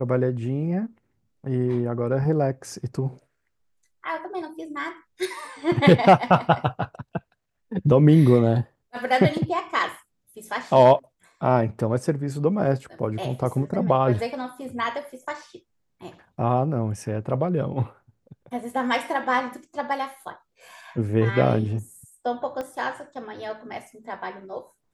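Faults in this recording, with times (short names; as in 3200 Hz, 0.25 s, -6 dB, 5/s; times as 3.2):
22.61 pop -19 dBFS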